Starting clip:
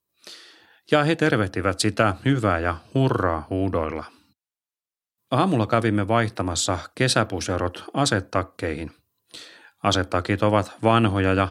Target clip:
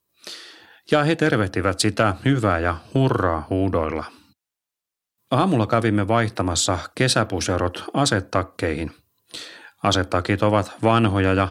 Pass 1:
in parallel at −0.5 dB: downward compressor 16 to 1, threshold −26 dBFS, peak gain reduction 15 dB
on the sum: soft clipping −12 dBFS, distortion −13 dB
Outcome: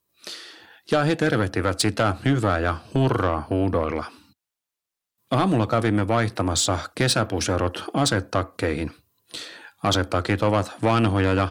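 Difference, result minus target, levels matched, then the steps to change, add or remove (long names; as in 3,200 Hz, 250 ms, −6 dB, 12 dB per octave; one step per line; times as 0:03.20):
soft clipping: distortion +11 dB
change: soft clipping −3.5 dBFS, distortion −24 dB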